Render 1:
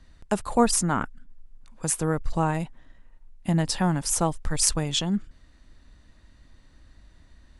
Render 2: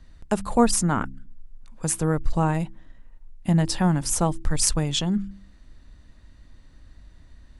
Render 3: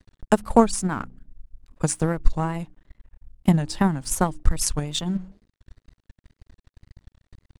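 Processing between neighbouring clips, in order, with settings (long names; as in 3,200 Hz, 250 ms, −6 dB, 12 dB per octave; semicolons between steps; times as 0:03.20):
low-shelf EQ 270 Hz +5 dB; hum removal 65.57 Hz, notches 5
dead-zone distortion −45.5 dBFS; tape wow and flutter 120 cents; transient designer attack +11 dB, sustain −2 dB; level −4 dB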